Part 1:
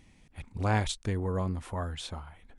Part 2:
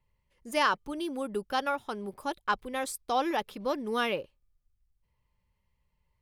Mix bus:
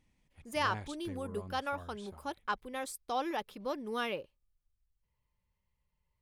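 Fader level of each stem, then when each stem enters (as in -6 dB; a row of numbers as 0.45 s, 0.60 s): -15.0 dB, -6.0 dB; 0.00 s, 0.00 s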